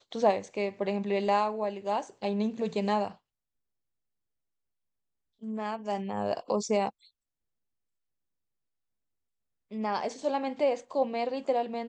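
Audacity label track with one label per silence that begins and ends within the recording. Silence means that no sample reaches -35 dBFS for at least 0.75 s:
3.080000	5.440000	silence
6.890000	9.720000	silence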